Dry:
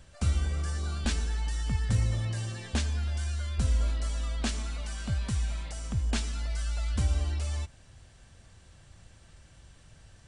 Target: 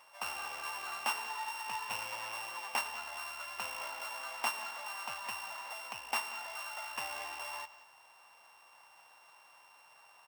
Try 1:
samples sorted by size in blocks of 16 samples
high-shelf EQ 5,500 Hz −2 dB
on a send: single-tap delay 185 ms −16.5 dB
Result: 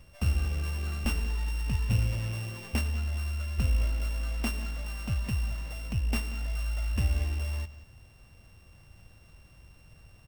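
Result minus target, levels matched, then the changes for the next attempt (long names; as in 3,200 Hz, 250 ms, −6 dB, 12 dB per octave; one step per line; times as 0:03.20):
1,000 Hz band −16.0 dB
add after samples sorted by size: high-pass with resonance 910 Hz, resonance Q 4.3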